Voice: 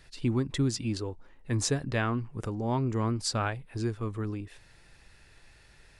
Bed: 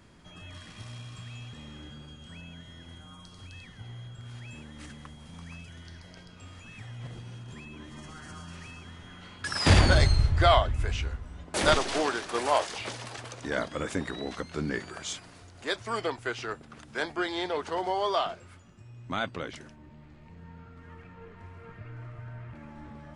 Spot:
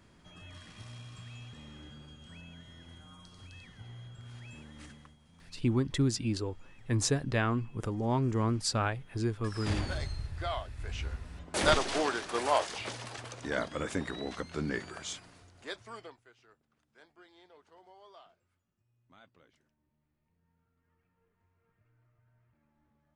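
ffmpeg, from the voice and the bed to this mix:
ffmpeg -i stem1.wav -i stem2.wav -filter_complex "[0:a]adelay=5400,volume=-0.5dB[link_01];[1:a]volume=8dB,afade=type=out:start_time=4.82:duration=0.37:silence=0.298538,afade=type=in:start_time=10.76:duration=0.41:silence=0.237137,afade=type=out:start_time=14.87:duration=1.37:silence=0.0530884[link_02];[link_01][link_02]amix=inputs=2:normalize=0" out.wav

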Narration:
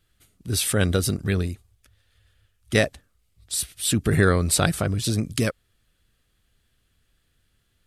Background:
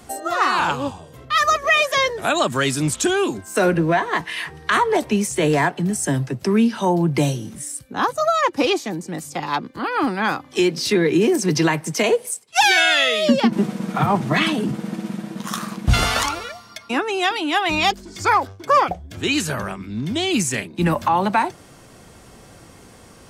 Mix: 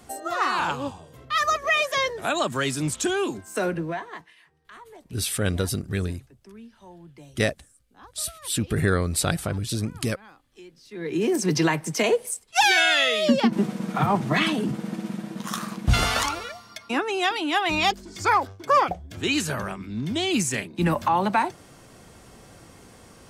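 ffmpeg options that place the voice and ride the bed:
ffmpeg -i stem1.wav -i stem2.wav -filter_complex "[0:a]adelay=4650,volume=-3.5dB[link_01];[1:a]volume=19.5dB,afade=type=out:start_time=3.35:duration=1:silence=0.0707946,afade=type=in:start_time=10.91:duration=0.49:silence=0.0562341[link_02];[link_01][link_02]amix=inputs=2:normalize=0" out.wav

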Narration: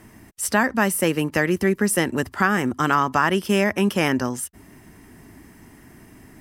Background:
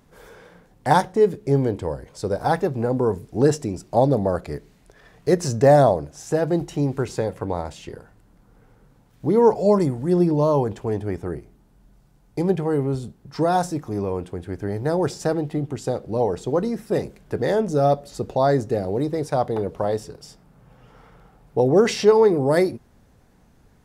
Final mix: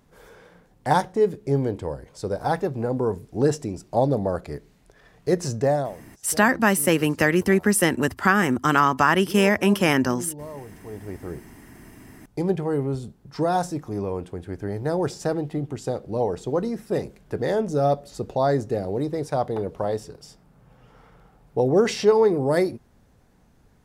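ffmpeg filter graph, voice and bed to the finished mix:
ffmpeg -i stem1.wav -i stem2.wav -filter_complex "[0:a]adelay=5850,volume=1dB[link_01];[1:a]volume=13dB,afade=type=out:start_time=5.49:duration=0.43:silence=0.16788,afade=type=in:start_time=10.78:duration=0.79:silence=0.158489[link_02];[link_01][link_02]amix=inputs=2:normalize=0" out.wav

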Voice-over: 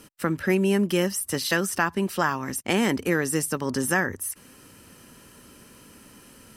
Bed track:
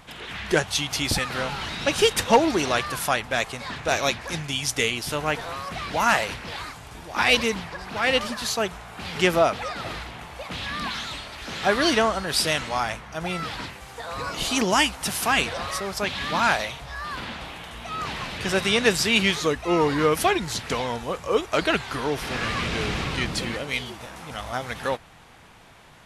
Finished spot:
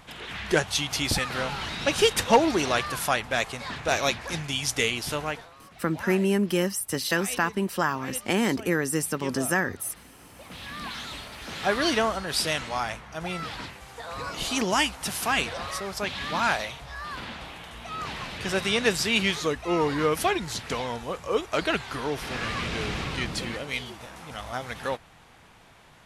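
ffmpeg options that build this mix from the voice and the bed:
ffmpeg -i stem1.wav -i stem2.wav -filter_complex "[0:a]adelay=5600,volume=-1.5dB[link_01];[1:a]volume=13.5dB,afade=type=out:start_time=5.12:duration=0.38:silence=0.141254,afade=type=in:start_time=10.13:duration=1.1:silence=0.177828[link_02];[link_01][link_02]amix=inputs=2:normalize=0" out.wav

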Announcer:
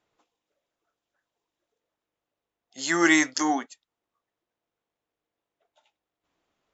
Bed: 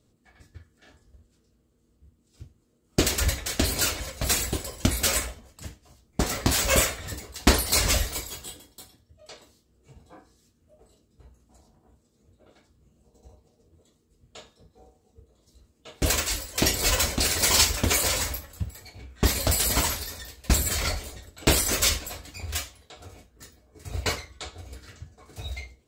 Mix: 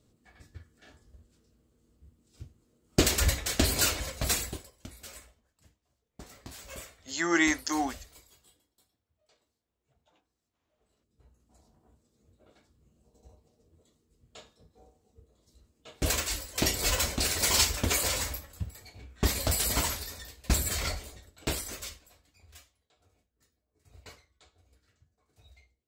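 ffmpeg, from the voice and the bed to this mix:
ffmpeg -i stem1.wav -i stem2.wav -filter_complex "[0:a]adelay=4300,volume=-5dB[link_01];[1:a]volume=17.5dB,afade=type=out:start_time=4.13:duration=0.58:silence=0.0794328,afade=type=in:start_time=10.73:duration=1.02:silence=0.11885,afade=type=out:start_time=20.8:duration=1.15:silence=0.11885[link_02];[link_01][link_02]amix=inputs=2:normalize=0" out.wav

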